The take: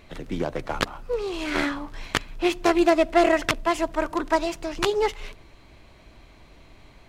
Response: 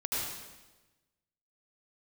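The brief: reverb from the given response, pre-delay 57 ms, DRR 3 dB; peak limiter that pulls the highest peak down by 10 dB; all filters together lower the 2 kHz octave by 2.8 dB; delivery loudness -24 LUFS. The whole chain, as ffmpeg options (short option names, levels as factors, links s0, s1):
-filter_complex "[0:a]equalizer=f=2000:t=o:g=-3.5,alimiter=limit=0.2:level=0:latency=1,asplit=2[s0][s1];[1:a]atrim=start_sample=2205,adelay=57[s2];[s1][s2]afir=irnorm=-1:irlink=0,volume=0.355[s3];[s0][s3]amix=inputs=2:normalize=0,volume=1.33"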